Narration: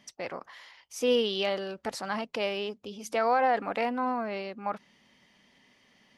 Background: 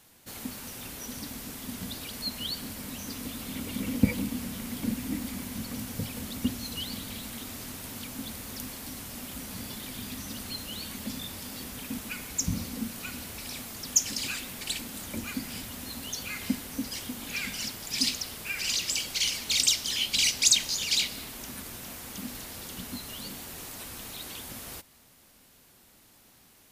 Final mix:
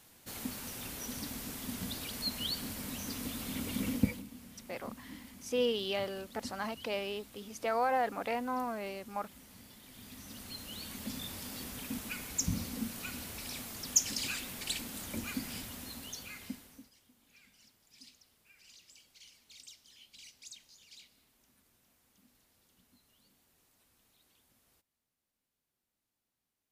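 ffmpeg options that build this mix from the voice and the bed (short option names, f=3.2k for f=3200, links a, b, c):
-filter_complex "[0:a]adelay=4500,volume=-5.5dB[a];[1:a]volume=11dB,afade=t=out:st=3.87:d=0.36:silence=0.188365,afade=t=in:st=9.83:d=1.48:silence=0.223872,afade=t=out:st=15.49:d=1.43:silence=0.0501187[b];[a][b]amix=inputs=2:normalize=0"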